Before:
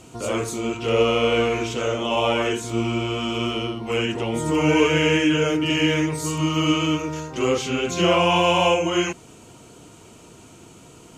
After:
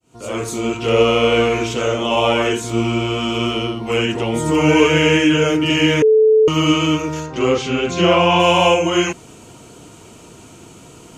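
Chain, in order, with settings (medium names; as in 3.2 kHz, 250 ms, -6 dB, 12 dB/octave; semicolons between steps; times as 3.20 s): fade-in on the opening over 0.59 s; 6.02–6.48 s: bleep 436 Hz -13 dBFS; 7.26–8.40 s: distance through air 77 m; trim +5 dB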